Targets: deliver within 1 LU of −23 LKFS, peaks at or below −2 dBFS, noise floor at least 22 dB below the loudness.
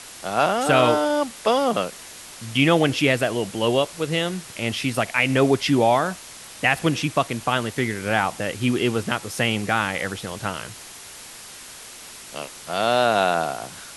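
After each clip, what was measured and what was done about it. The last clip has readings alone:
background noise floor −41 dBFS; target noise floor −44 dBFS; integrated loudness −22.0 LKFS; sample peak −3.0 dBFS; target loudness −23.0 LKFS
→ broadband denoise 6 dB, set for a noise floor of −41 dBFS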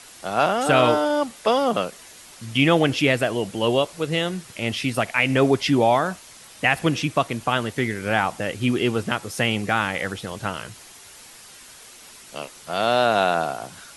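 background noise floor −45 dBFS; integrated loudness −22.0 LKFS; sample peak −3.0 dBFS; target loudness −23.0 LKFS
→ level −1 dB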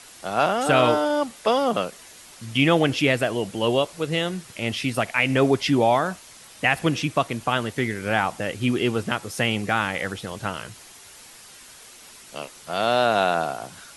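integrated loudness −23.0 LKFS; sample peak −4.0 dBFS; background noise floor −46 dBFS

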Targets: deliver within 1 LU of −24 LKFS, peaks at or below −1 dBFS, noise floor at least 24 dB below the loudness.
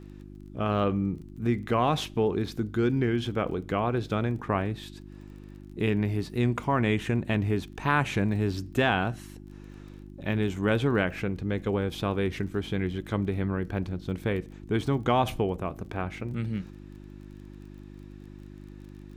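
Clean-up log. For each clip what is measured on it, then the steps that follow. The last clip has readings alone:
crackle rate 25 per second; mains hum 50 Hz; hum harmonics up to 350 Hz; level of the hum −43 dBFS; integrated loudness −28.5 LKFS; sample peak −11.5 dBFS; target loudness −24.0 LKFS
→ click removal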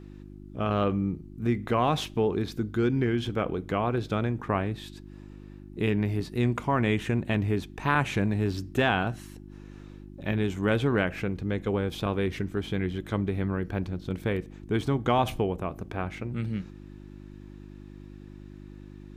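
crackle rate 0.052 per second; mains hum 50 Hz; hum harmonics up to 350 Hz; level of the hum −43 dBFS
→ hum removal 50 Hz, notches 7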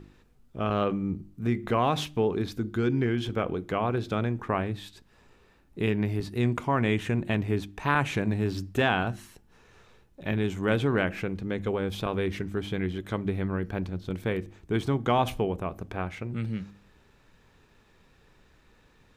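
mains hum none found; integrated loudness −29.0 LKFS; sample peak −11.5 dBFS; target loudness −24.0 LKFS
→ level +5 dB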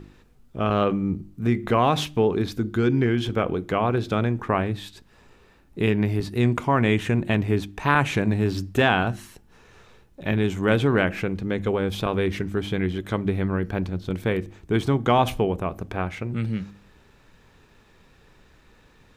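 integrated loudness −24.0 LKFS; sample peak −6.5 dBFS; background noise floor −56 dBFS

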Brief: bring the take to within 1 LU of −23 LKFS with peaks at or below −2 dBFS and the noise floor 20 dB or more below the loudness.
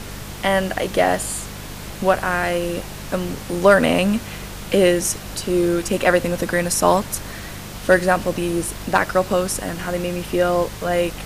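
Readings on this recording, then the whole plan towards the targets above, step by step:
mains hum 50 Hz; hum harmonics up to 200 Hz; level of the hum −34 dBFS; background noise floor −34 dBFS; target noise floor −40 dBFS; integrated loudness −20.0 LKFS; sample peak −2.0 dBFS; target loudness −23.0 LKFS
→ hum removal 50 Hz, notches 4
noise reduction from a noise print 6 dB
level −3 dB

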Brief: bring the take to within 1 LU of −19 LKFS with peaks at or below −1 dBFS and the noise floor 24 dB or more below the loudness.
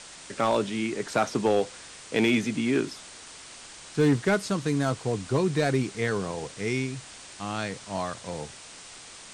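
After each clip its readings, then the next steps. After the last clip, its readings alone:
share of clipped samples 0.4%; peaks flattened at −15.0 dBFS; background noise floor −46 dBFS; target noise floor −52 dBFS; integrated loudness −27.5 LKFS; sample peak −15.0 dBFS; target loudness −19.0 LKFS
→ clipped peaks rebuilt −15 dBFS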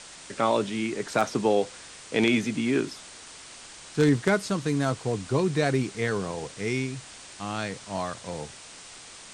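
share of clipped samples 0.0%; background noise floor −46 dBFS; target noise floor −52 dBFS
→ broadband denoise 6 dB, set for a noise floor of −46 dBFS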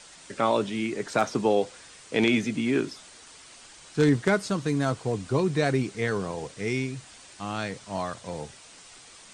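background noise floor −50 dBFS; target noise floor −51 dBFS
→ broadband denoise 6 dB, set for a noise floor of −50 dBFS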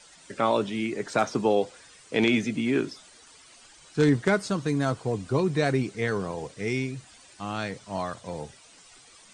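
background noise floor −53 dBFS; integrated loudness −27.0 LKFS; sample peak −6.5 dBFS; target loudness −19.0 LKFS
→ level +8 dB
brickwall limiter −1 dBFS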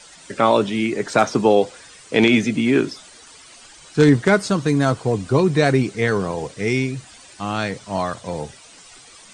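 integrated loudness −19.5 LKFS; sample peak −1.0 dBFS; background noise floor −45 dBFS

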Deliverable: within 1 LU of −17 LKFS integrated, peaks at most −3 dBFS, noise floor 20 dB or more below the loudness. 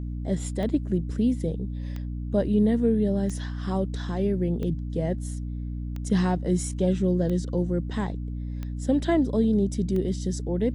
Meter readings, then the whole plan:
number of clicks 8; mains hum 60 Hz; hum harmonics up to 300 Hz; level of the hum −29 dBFS; integrated loudness −26.5 LKFS; sample peak −11.0 dBFS; target loudness −17.0 LKFS
→ click removal
hum removal 60 Hz, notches 5
level +9.5 dB
brickwall limiter −3 dBFS

